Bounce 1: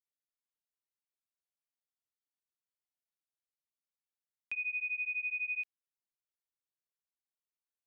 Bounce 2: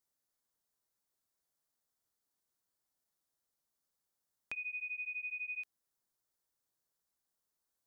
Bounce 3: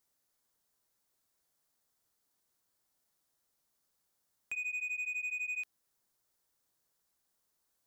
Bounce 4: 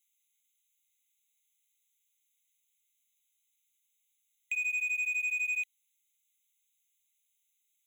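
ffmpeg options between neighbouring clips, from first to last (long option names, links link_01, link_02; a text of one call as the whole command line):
ffmpeg -i in.wav -af "acompressor=threshold=-36dB:ratio=6,equalizer=frequency=2600:width=1.7:gain=-12,volume=9.5dB" out.wav
ffmpeg -i in.wav -af "asoftclip=type=tanh:threshold=-39dB,volume=6.5dB" out.wav
ffmpeg -i in.wav -af "acrusher=bits=5:mode=log:mix=0:aa=0.000001,afftfilt=real='re*eq(mod(floor(b*sr/1024/2000),2),1)':imag='im*eq(mod(floor(b*sr/1024/2000),2),1)':win_size=1024:overlap=0.75,volume=5.5dB" out.wav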